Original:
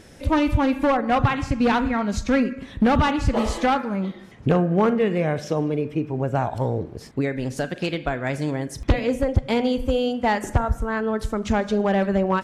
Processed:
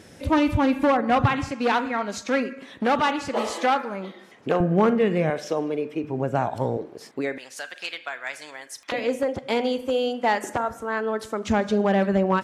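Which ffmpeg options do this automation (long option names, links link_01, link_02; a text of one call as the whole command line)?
ffmpeg -i in.wav -af "asetnsamples=nb_out_samples=441:pad=0,asendcmd='1.49 highpass f 360;4.6 highpass f 97;5.3 highpass f 320;6.04 highpass f 150;6.77 highpass f 340;7.38 highpass f 1200;8.92 highpass f 310;11.48 highpass f 90',highpass=86" out.wav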